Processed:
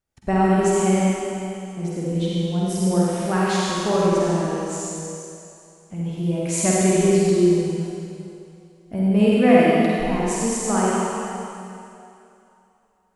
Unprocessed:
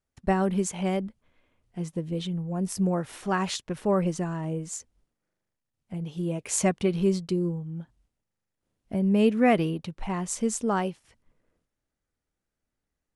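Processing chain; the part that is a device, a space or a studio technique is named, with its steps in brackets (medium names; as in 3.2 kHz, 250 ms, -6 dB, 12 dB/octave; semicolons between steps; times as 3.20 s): tunnel (flutter echo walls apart 8.2 m, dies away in 0.49 s; reverberation RT60 2.7 s, pre-delay 49 ms, DRR -5.5 dB)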